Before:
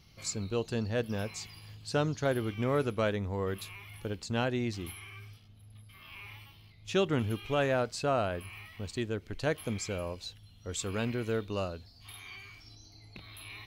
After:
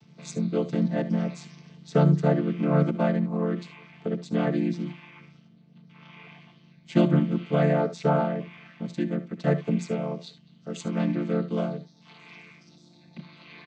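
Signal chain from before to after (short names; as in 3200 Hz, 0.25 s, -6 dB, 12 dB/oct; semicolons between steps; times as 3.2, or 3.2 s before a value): chord vocoder minor triad, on D3; early reflections 62 ms -16 dB, 74 ms -16 dB; gain +8 dB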